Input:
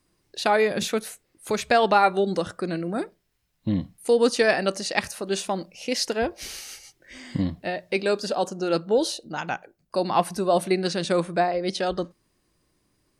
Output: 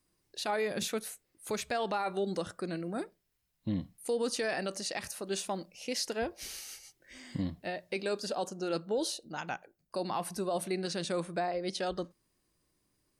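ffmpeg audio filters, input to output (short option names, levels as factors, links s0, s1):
-af "alimiter=limit=0.168:level=0:latency=1:release=37,highshelf=f=7500:g=7,volume=0.376"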